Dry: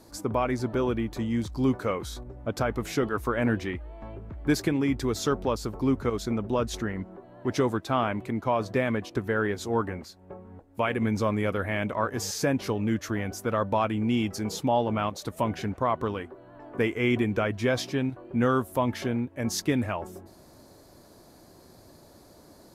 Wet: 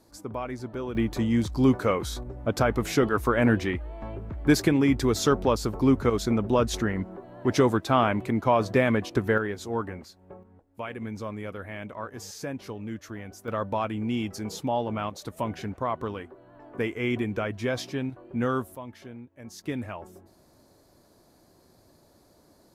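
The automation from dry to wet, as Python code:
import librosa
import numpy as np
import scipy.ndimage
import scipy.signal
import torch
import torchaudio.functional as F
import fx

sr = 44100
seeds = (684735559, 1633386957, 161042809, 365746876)

y = fx.gain(x, sr, db=fx.steps((0.0, -7.0), (0.95, 4.0), (9.38, -3.0), (10.43, -9.0), (13.48, -3.0), (18.75, -14.5), (19.64, -6.5)))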